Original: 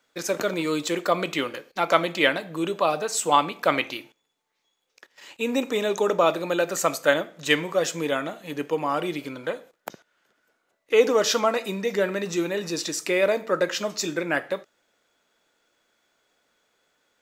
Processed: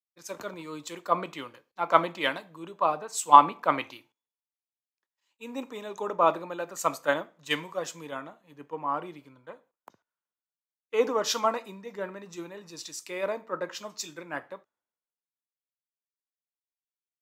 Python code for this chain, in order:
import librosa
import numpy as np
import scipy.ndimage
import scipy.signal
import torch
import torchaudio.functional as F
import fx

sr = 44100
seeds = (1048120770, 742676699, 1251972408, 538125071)

y = fx.graphic_eq_15(x, sr, hz=(100, 250, 1000), db=(9, 3, 11))
y = fx.band_widen(y, sr, depth_pct=100)
y = y * 10.0 ** (-12.0 / 20.0)